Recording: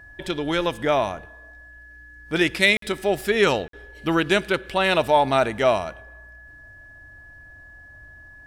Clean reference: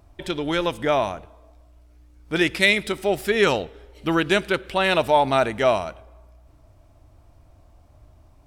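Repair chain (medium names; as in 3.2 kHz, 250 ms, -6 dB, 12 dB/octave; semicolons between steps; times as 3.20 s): band-stop 1.7 kHz, Q 30; interpolate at 2.77/3.68 s, 53 ms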